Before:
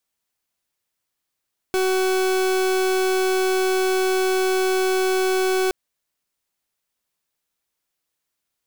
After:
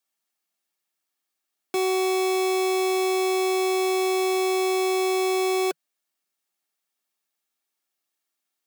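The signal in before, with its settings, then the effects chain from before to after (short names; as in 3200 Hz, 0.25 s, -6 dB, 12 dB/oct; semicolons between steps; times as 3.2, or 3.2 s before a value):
pulse 375 Hz, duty 39% -20 dBFS 3.97 s
elliptic high-pass 160 Hz; low shelf 240 Hz -8 dB; notch comb 500 Hz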